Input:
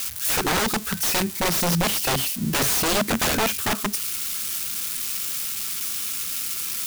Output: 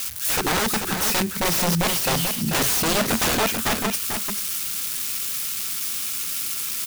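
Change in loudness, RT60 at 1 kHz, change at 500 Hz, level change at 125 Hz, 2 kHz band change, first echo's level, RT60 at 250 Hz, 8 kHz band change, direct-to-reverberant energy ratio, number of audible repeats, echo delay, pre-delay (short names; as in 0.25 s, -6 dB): +1.0 dB, none, +1.0 dB, +1.0 dB, +1.0 dB, -6.5 dB, none, +1.0 dB, none, 1, 0.439 s, none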